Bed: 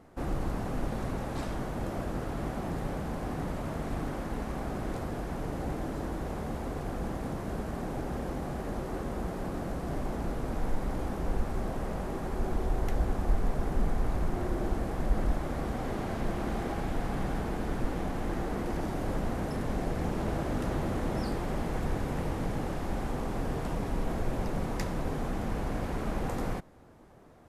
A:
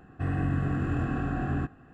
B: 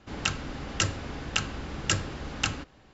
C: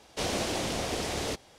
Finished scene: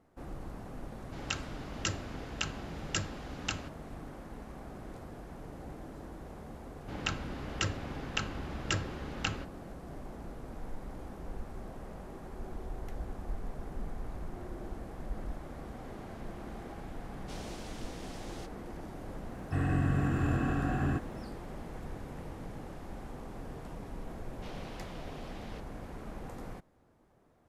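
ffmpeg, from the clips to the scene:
-filter_complex "[2:a]asplit=2[s0][s1];[3:a]asplit=2[s2][s3];[0:a]volume=0.282[s4];[s1]lowpass=f=3500:p=1[s5];[1:a]aemphasis=mode=production:type=50kf[s6];[s3]highpass=490,lowpass=3300[s7];[s0]atrim=end=2.93,asetpts=PTS-STARTPTS,volume=0.422,afade=t=in:d=0.004:c=hsin,afade=t=out:st=2.926:d=0.004:c=hsin,adelay=1050[s8];[s5]atrim=end=2.93,asetpts=PTS-STARTPTS,volume=0.631,afade=t=in:d=0.004:c=hsin,afade=t=out:st=2.926:d=0.004:c=hsin,adelay=6810[s9];[s2]atrim=end=1.58,asetpts=PTS-STARTPTS,volume=0.15,afade=t=in:d=0.004:c=hsin,afade=t=out:st=1.576:d=0.004:c=hsin,adelay=17110[s10];[s6]atrim=end=1.93,asetpts=PTS-STARTPTS,volume=0.841,afade=t=in:d=0.004:c=hsin,afade=t=out:st=1.926:d=0.004:c=hsin,adelay=19320[s11];[s7]atrim=end=1.58,asetpts=PTS-STARTPTS,volume=0.178,afade=t=in:d=0.004:c=hsin,afade=t=out:st=1.576:d=0.004:c=hsin,adelay=24250[s12];[s4][s8][s9][s10][s11][s12]amix=inputs=6:normalize=0"

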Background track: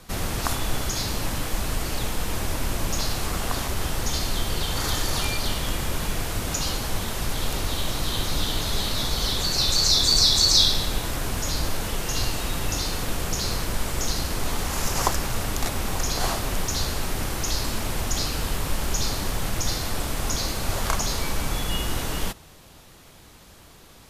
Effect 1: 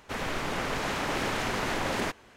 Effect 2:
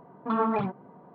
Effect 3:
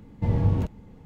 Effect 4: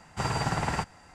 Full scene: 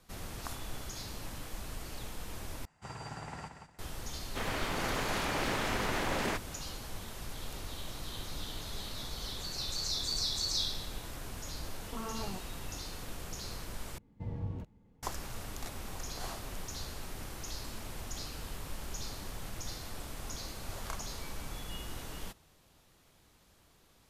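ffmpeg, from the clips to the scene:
-filter_complex "[0:a]volume=0.168[s0];[4:a]aecho=1:1:179|358|537:0.422|0.114|0.0307[s1];[2:a]acompressor=threshold=0.0355:ratio=6:attack=3.2:release=140:knee=1:detection=peak[s2];[s0]asplit=3[s3][s4][s5];[s3]atrim=end=2.654[s6];[s1]atrim=end=1.14,asetpts=PTS-STARTPTS,volume=0.168[s7];[s4]atrim=start=3.786:end=13.984[s8];[3:a]atrim=end=1.05,asetpts=PTS-STARTPTS,volume=0.158[s9];[s5]atrim=start=15.026[s10];[1:a]atrim=end=2.36,asetpts=PTS-STARTPTS,volume=0.668,afade=t=in:d=0.004:c=hsin,afade=t=out:st=2.356:d=0.004:c=hsin,adelay=4260[s11];[s2]atrim=end=1.14,asetpts=PTS-STARTPTS,volume=0.376,afade=t=in:d=0.004:c=hsin,afade=t=out:st=1.136:d=0.004:c=hsin,adelay=11670[s12];[s6][s7]acrossfade=d=0.004:c1=hsin:c2=hsin[s13];[s13][s8]acrossfade=d=0.004:c1=hsin:c2=hsin[s14];[s14][s9]acrossfade=d=0.004:c1=hsin:c2=hsin[s15];[s15][s10]acrossfade=d=0.004:c1=hsin:c2=hsin[s16];[s16][s11][s12]amix=inputs=3:normalize=0"

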